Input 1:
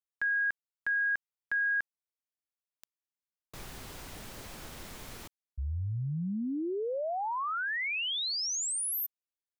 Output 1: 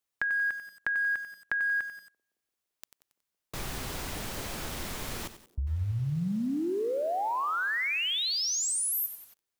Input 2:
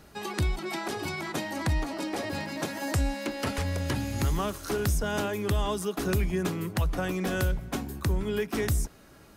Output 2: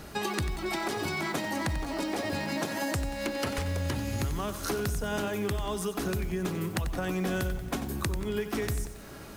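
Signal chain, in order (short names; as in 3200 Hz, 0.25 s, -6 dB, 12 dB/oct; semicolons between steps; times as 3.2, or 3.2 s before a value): compressor 10:1, threshold -37 dBFS; on a send: narrowing echo 0.17 s, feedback 66%, band-pass 370 Hz, level -22 dB; on the sum: lo-fi delay 92 ms, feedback 55%, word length 9-bit, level -11 dB; gain +8.5 dB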